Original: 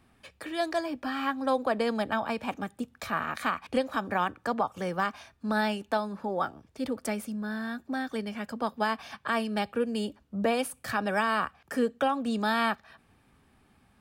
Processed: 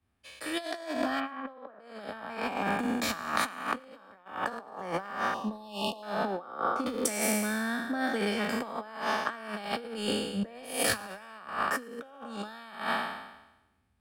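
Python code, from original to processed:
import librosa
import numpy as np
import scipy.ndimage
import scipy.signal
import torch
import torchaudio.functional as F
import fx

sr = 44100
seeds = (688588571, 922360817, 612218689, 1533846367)

p1 = fx.spec_trails(x, sr, decay_s=1.63)
p2 = scipy.signal.sosfilt(scipy.signal.butter(2, 68.0, 'highpass', fs=sr, output='sos'), p1)
p3 = fx.peak_eq(p2, sr, hz=140.0, db=-10.0, octaves=0.45)
p4 = fx.over_compress(p3, sr, threshold_db=-31.0, ratio=-0.5)
p5 = fx.air_absorb(p4, sr, metres=370.0, at=(1.19, 1.78), fade=0.02)
p6 = fx.comb_fb(p5, sr, f0_hz=270.0, decay_s=1.1, harmonics='all', damping=0.0, mix_pct=60, at=(3.79, 4.26))
p7 = fx.brickwall_bandstop(p6, sr, low_hz=1200.0, high_hz=2500.0, at=(5.34, 6.03))
p8 = p7 + fx.echo_thinned(p7, sr, ms=112, feedback_pct=52, hz=1100.0, wet_db=-23.5, dry=0)
p9 = fx.band_widen(p8, sr, depth_pct=70)
y = p9 * 10.0 ** (-1.5 / 20.0)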